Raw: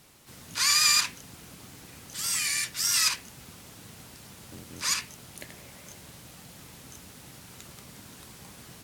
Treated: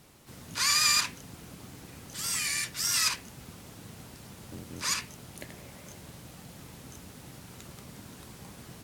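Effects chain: tilt shelf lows +3 dB, about 1.1 kHz

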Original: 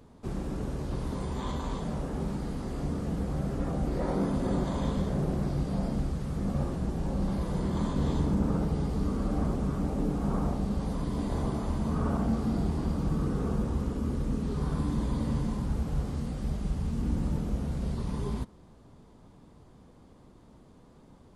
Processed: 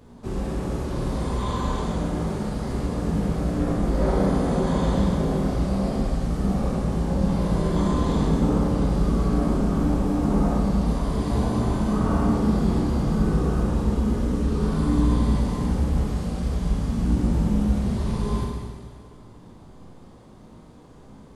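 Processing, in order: chorus 1.4 Hz, delay 16.5 ms, depth 2.4 ms; Schroeder reverb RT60 1.8 s, combs from 30 ms, DRR -1 dB; trim +7.5 dB

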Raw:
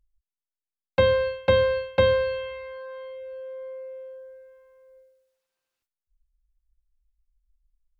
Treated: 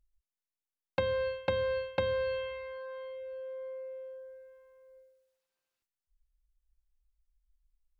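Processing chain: compression 12:1, threshold -23 dBFS, peak gain reduction 9.5 dB; trim -4 dB

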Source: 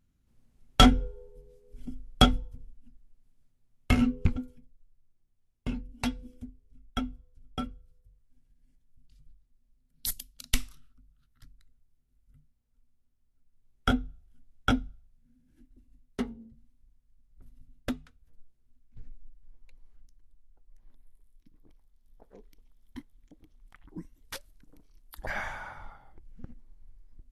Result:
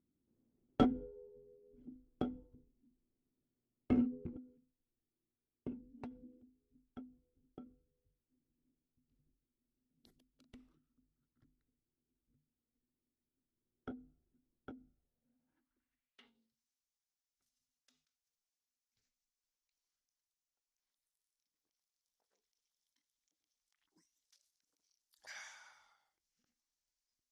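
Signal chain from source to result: band-pass sweep 330 Hz -> 5.8 kHz, 14.93–16.60 s; endings held to a fixed fall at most 130 dB/s; trim +1.5 dB

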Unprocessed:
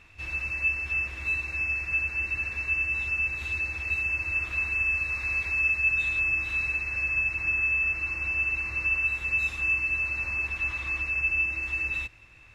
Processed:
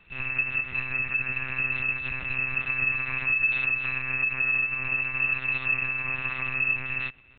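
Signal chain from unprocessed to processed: dynamic bell 1.5 kHz, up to +6 dB, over -43 dBFS, Q 0.97; tempo 1.7×; monotone LPC vocoder at 8 kHz 130 Hz; trim -1.5 dB

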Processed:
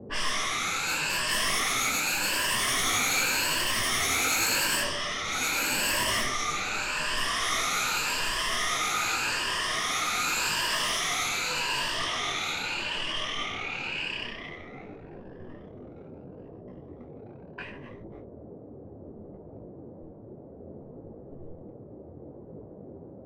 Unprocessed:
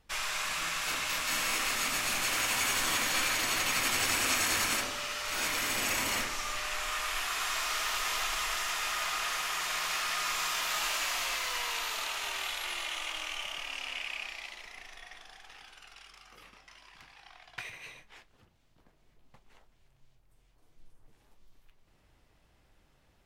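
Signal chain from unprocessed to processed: drifting ripple filter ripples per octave 1.3, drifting +0.85 Hz, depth 13 dB; waveshaping leveller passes 3; level-controlled noise filter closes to 640 Hz, open at -17.5 dBFS; band noise 66–530 Hz -38 dBFS; hard clipper -15 dBFS, distortion -36 dB; detune thickener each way 23 cents; trim -3.5 dB

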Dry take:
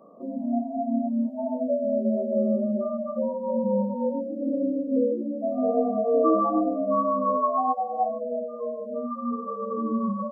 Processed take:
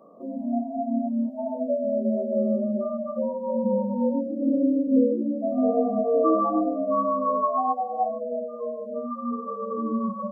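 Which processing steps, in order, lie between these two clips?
3.63–5.99 s: dynamic bell 250 Hz, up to +6 dB, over -37 dBFS, Q 2.4; hum notches 50/100/150/200/250 Hz

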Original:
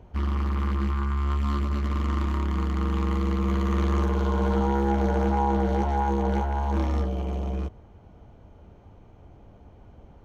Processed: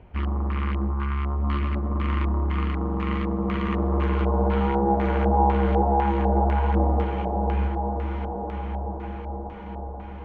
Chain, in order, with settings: echo that smears into a reverb 1342 ms, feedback 54%, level -7 dB; LFO low-pass square 2 Hz 740–2500 Hz

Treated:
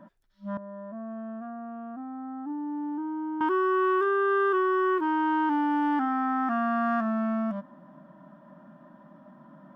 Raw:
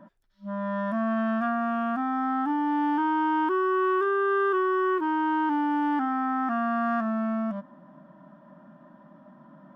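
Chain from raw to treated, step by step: 0.57–3.41 s: band-pass filter 390 Hz, Q 2.8

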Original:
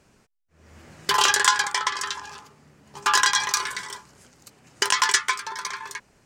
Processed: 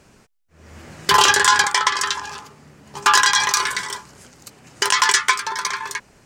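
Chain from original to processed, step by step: 1.11–1.65 s: bass shelf 380 Hz +7.5 dB; loudness maximiser +8.5 dB; trim -1 dB

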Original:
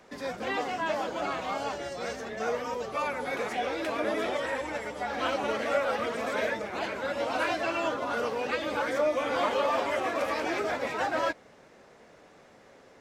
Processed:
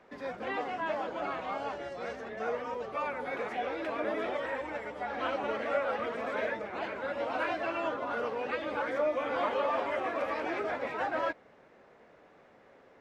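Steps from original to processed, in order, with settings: tone controls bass -3 dB, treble -15 dB; trim -3 dB

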